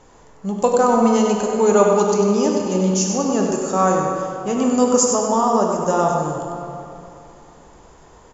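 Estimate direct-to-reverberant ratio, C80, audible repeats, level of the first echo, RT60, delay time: -0.5 dB, 1.5 dB, 1, -6.5 dB, 2.9 s, 97 ms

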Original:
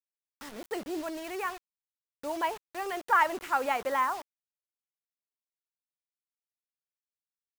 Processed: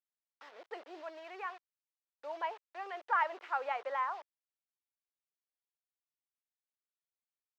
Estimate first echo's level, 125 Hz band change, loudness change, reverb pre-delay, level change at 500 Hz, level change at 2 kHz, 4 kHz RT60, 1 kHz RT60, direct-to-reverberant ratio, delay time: no echo, no reading, -7.0 dB, no reverb, -8.0 dB, -7.5 dB, no reverb, no reverb, no reverb, no echo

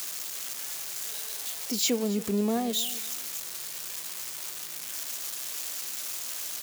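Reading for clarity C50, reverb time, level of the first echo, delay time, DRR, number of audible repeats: no reverb, no reverb, -18.0 dB, 274 ms, no reverb, 2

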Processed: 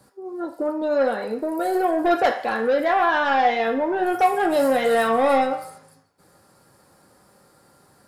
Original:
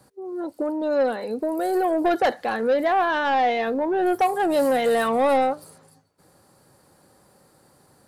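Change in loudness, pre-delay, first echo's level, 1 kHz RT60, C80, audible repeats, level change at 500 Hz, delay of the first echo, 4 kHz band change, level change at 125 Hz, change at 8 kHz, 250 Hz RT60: +1.0 dB, 3 ms, no echo, 0.60 s, 12.0 dB, no echo, +1.0 dB, no echo, +1.5 dB, no reading, +0.5 dB, 0.35 s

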